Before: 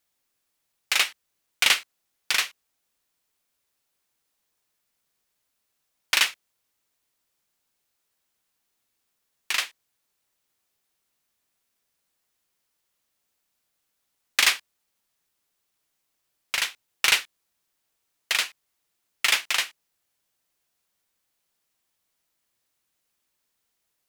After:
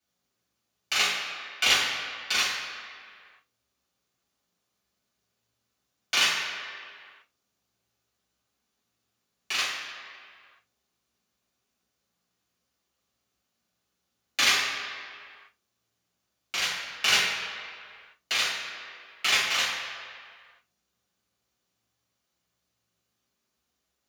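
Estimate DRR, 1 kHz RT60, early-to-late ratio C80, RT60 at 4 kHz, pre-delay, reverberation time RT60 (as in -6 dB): -9.0 dB, 2.1 s, 3.5 dB, 1.5 s, 3 ms, 2.1 s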